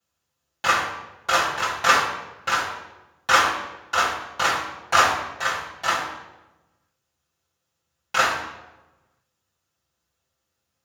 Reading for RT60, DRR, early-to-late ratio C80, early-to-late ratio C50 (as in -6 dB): 1.1 s, -9.0 dB, 7.0 dB, 4.5 dB